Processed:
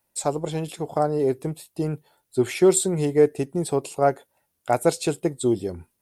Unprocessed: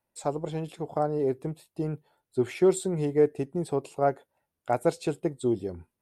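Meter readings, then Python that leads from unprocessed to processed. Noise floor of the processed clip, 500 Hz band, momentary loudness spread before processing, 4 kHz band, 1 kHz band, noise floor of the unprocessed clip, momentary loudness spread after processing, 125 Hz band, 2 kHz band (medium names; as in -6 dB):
-75 dBFS, +4.5 dB, 11 LU, +10.0 dB, +5.0 dB, -85 dBFS, 11 LU, +4.5 dB, +6.5 dB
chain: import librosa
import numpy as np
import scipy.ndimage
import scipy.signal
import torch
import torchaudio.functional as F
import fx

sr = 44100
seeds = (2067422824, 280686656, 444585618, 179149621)

y = fx.high_shelf(x, sr, hz=3700.0, db=10.5)
y = F.gain(torch.from_numpy(y), 4.5).numpy()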